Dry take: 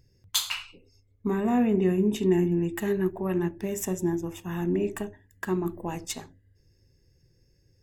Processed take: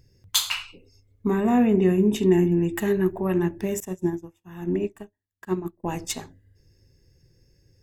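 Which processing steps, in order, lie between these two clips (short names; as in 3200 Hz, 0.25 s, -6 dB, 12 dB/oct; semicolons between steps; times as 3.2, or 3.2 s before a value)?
3.8–5.84 upward expander 2.5:1, over -46 dBFS; gain +4 dB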